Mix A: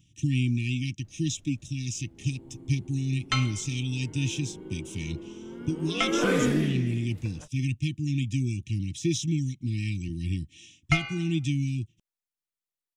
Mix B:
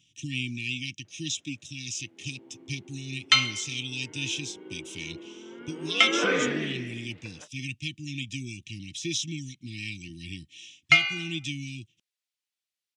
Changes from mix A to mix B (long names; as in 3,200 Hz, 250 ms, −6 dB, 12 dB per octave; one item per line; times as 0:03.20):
speech −6.0 dB
first sound: add band-pass filter 290–2,000 Hz
master: add meter weighting curve D